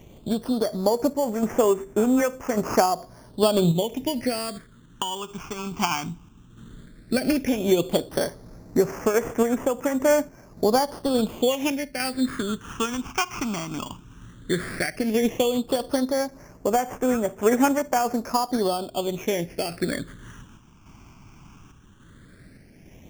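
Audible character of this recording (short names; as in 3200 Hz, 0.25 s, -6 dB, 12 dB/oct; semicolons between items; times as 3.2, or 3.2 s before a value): aliases and images of a low sample rate 3900 Hz, jitter 0%; phasing stages 8, 0.13 Hz, lowest notch 530–4100 Hz; random-step tremolo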